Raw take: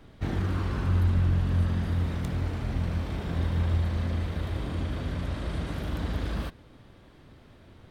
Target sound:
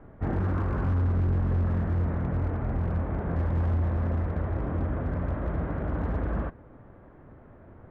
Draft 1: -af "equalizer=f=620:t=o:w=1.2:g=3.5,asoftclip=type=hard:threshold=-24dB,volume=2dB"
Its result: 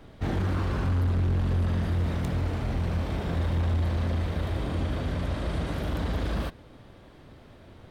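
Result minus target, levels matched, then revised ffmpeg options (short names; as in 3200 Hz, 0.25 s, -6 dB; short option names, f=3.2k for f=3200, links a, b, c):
2000 Hz band +3.0 dB
-af "lowpass=f=1.7k:w=0.5412,lowpass=f=1.7k:w=1.3066,equalizer=f=620:t=o:w=1.2:g=3.5,asoftclip=type=hard:threshold=-24dB,volume=2dB"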